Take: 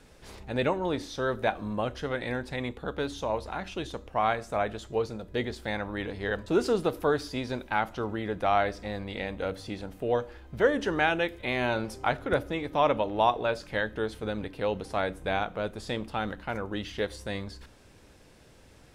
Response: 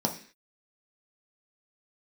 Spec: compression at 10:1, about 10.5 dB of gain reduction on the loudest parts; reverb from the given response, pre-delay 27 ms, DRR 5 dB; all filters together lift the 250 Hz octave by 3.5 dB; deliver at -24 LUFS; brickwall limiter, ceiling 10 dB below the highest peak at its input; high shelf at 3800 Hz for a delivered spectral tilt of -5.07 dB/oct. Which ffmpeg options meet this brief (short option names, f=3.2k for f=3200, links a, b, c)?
-filter_complex "[0:a]equalizer=f=250:t=o:g=4.5,highshelf=f=3.8k:g=6,acompressor=threshold=-27dB:ratio=10,alimiter=limit=-24dB:level=0:latency=1,asplit=2[a][b];[1:a]atrim=start_sample=2205,adelay=27[c];[b][c]afir=irnorm=-1:irlink=0,volume=-13dB[d];[a][d]amix=inputs=2:normalize=0,volume=8.5dB"